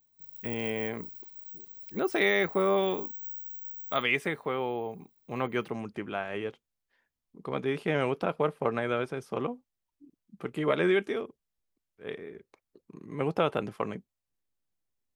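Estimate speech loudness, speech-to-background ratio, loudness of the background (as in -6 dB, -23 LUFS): -31.0 LUFS, 9.0 dB, -40.0 LUFS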